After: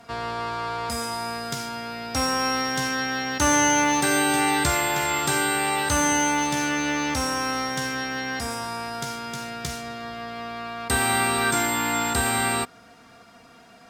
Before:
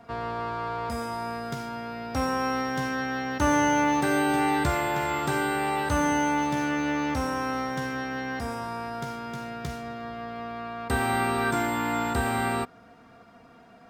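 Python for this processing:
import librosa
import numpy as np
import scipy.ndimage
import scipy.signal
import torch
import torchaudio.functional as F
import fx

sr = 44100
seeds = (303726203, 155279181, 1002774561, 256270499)

y = fx.peak_eq(x, sr, hz=8000.0, db=14.0, octaves=3.0)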